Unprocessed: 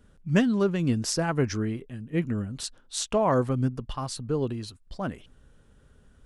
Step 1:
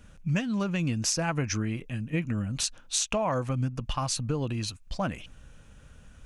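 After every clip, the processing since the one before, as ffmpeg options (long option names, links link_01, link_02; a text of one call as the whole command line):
ffmpeg -i in.wav -af "equalizer=frequency=250:width_type=o:width=0.33:gain=-4,equalizer=frequency=400:width_type=o:width=0.33:gain=-11,equalizer=frequency=2500:width_type=o:width=0.33:gain=9,equalizer=frequency=6300:width_type=o:width=0.33:gain=7,acompressor=threshold=-31dB:ratio=6,volume=6dB" out.wav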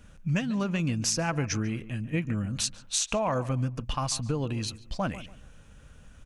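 ffmpeg -i in.wav -filter_complex "[0:a]asplit=2[link_01][link_02];[link_02]adelay=143,lowpass=frequency=1900:poles=1,volume=-15dB,asplit=2[link_03][link_04];[link_04]adelay=143,lowpass=frequency=1900:poles=1,volume=0.3,asplit=2[link_05][link_06];[link_06]adelay=143,lowpass=frequency=1900:poles=1,volume=0.3[link_07];[link_01][link_03][link_05][link_07]amix=inputs=4:normalize=0" out.wav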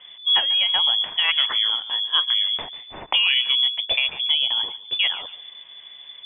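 ffmpeg -i in.wav -af "lowpass=frequency=3000:width_type=q:width=0.5098,lowpass=frequency=3000:width_type=q:width=0.6013,lowpass=frequency=3000:width_type=q:width=0.9,lowpass=frequency=3000:width_type=q:width=2.563,afreqshift=-3500,volume=8dB" out.wav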